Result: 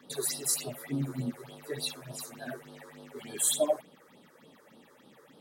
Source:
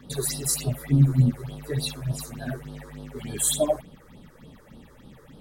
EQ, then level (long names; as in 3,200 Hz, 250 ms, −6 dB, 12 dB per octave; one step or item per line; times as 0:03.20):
high-pass filter 310 Hz 12 dB per octave
−3.5 dB